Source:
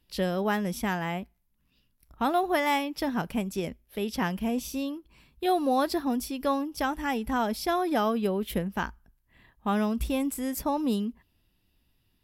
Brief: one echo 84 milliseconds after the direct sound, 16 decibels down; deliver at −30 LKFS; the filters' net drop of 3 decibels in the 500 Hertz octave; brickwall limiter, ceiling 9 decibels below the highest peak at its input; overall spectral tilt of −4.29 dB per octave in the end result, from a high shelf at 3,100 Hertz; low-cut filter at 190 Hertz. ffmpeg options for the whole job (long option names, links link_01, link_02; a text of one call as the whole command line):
ffmpeg -i in.wav -af "highpass=190,equalizer=frequency=500:width_type=o:gain=-4,highshelf=frequency=3100:gain=3,alimiter=limit=-23dB:level=0:latency=1,aecho=1:1:84:0.158,volume=2.5dB" out.wav